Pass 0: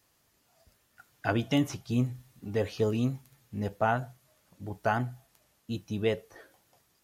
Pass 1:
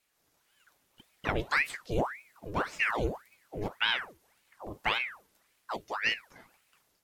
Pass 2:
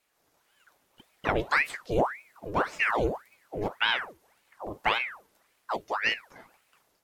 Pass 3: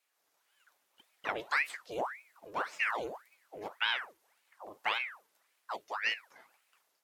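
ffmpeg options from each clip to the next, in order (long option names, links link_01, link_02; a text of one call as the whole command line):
ffmpeg -i in.wav -af "dynaudnorm=framelen=120:gausssize=3:maxgain=5dB,aeval=exprs='val(0)*sin(2*PI*1300*n/s+1300*0.85/1.8*sin(2*PI*1.8*n/s))':channel_layout=same,volume=-4.5dB" out.wav
ffmpeg -i in.wav -af "equalizer=frequency=680:width=0.47:gain=6" out.wav
ffmpeg -i in.wav -af "highpass=frequency=940:poles=1,volume=-4.5dB" out.wav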